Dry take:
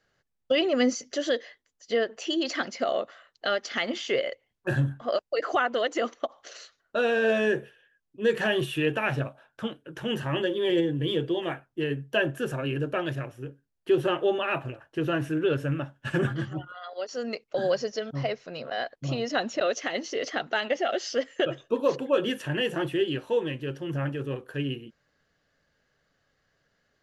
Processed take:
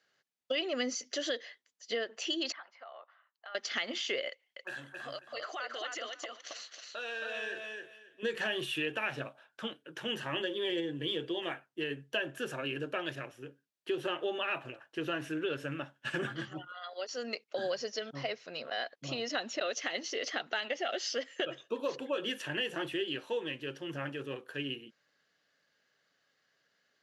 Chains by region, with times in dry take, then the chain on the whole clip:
2.52–3.55 s: ladder band-pass 1.1 kHz, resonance 50% + compression 3:1, threshold -40 dBFS
4.29–8.23 s: high-pass 880 Hz 6 dB/octave + compression 3:1, threshold -35 dBFS + feedback delay 272 ms, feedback 19%, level -3.5 dB
whole clip: high-pass 200 Hz 12 dB/octave; peaking EQ 3.7 kHz +8 dB 2.8 oct; compression 3:1, threshold -24 dBFS; trim -7 dB

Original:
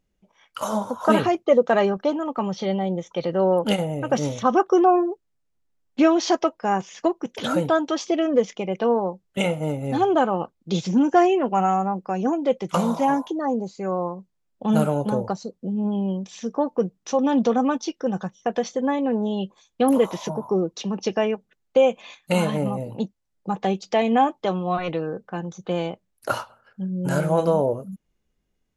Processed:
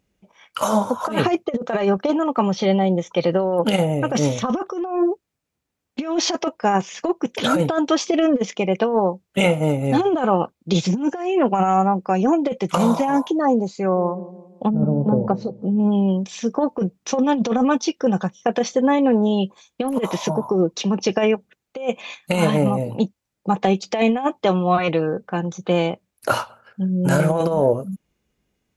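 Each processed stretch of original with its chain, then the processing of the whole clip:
13.67–15.80 s: low-pass that closes with the level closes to 340 Hz, closed at -17.5 dBFS + feedback echo behind a low-pass 171 ms, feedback 38%, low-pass 520 Hz, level -12 dB
whole clip: high-pass 58 Hz; peaking EQ 2.4 kHz +4 dB 0.23 oct; compressor with a negative ratio -21 dBFS, ratio -0.5; trim +4.5 dB

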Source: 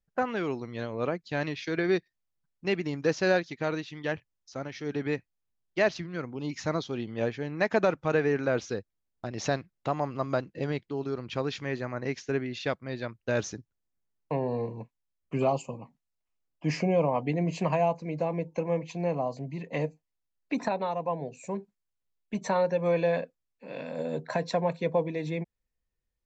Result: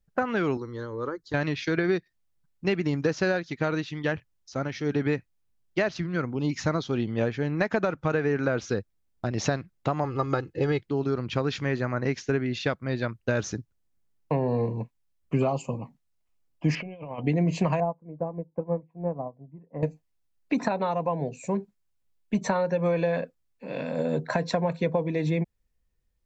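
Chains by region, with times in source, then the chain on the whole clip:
0.57–1.34 s: compression 2:1, threshold -33 dBFS + static phaser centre 680 Hz, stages 6
10.04–10.82 s: comb 2.4 ms, depth 68% + tape noise reduction on one side only decoder only
16.75–17.24 s: four-pole ladder low-pass 3.3 kHz, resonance 65% + compressor with a negative ratio -41 dBFS, ratio -0.5
17.80–19.83 s: low-pass 1.3 kHz 24 dB/octave + upward expansion 2.5:1, over -37 dBFS
whole clip: dynamic bell 1.4 kHz, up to +5 dB, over -49 dBFS, Q 2.7; compression 6:1, threshold -27 dBFS; bass shelf 260 Hz +6.5 dB; trim +4 dB

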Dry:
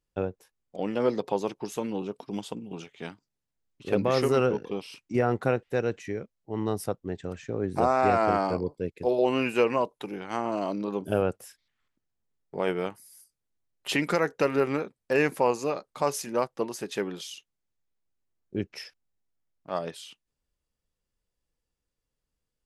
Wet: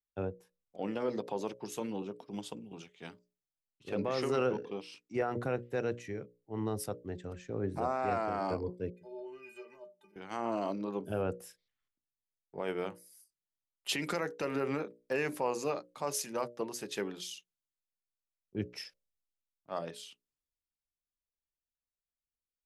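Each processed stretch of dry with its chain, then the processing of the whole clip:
3.89–5.21 s: low-pass 7.7 kHz + bass shelf 140 Hz -6.5 dB
8.90–10.16 s: compression 4:1, threshold -24 dBFS + inharmonic resonator 180 Hz, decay 0.32 s, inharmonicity 0.03
whole clip: hum notches 60/120/180/240/300/360/420/480/540/600 Hz; peak limiter -18 dBFS; three bands expanded up and down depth 40%; trim -4.5 dB

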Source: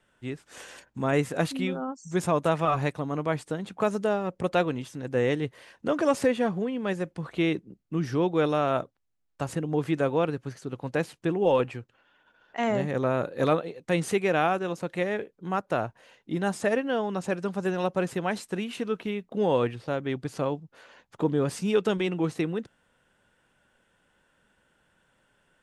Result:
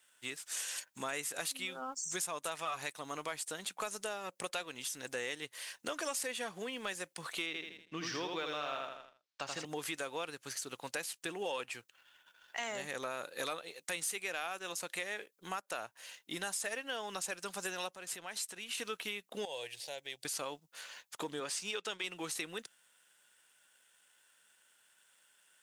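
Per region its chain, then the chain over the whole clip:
7.46–9.65 s: low-pass 5.2 kHz 24 dB/octave + feedback delay 81 ms, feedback 36%, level -3.5 dB
17.94–18.78 s: treble shelf 7.7 kHz -5 dB + compression 3:1, threshold -41 dBFS
19.45–20.25 s: peaking EQ 330 Hz -8 dB 0.82 oct + compression 1.5:1, threshold -41 dBFS + static phaser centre 520 Hz, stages 4
21.40–22.04 s: high-pass 270 Hz 6 dB/octave + distance through air 70 m
whole clip: differentiator; compression 4:1, threshold -51 dBFS; waveshaping leveller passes 1; trim +11 dB

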